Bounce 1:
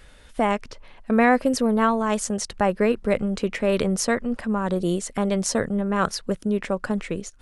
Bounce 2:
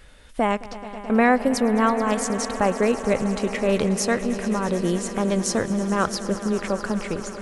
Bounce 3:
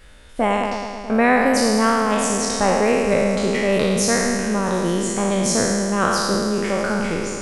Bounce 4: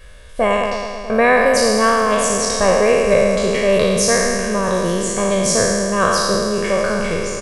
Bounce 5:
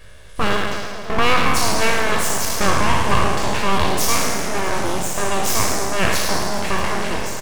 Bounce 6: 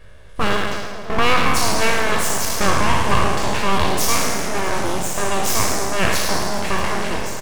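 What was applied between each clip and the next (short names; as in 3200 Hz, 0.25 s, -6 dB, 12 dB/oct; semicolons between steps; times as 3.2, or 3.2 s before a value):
swelling echo 0.108 s, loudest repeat 5, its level -17 dB
spectral trails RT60 1.83 s
comb 1.8 ms, depth 64%; gain +2 dB
full-wave rectifier
mismatched tape noise reduction decoder only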